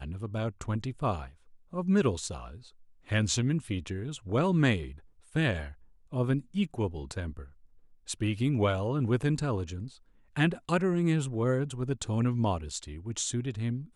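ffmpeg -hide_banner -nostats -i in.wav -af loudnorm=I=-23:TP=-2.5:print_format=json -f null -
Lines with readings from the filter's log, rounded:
"input_i" : "-30.7",
"input_tp" : "-11.9",
"input_lra" : "3.2",
"input_thresh" : "-41.2",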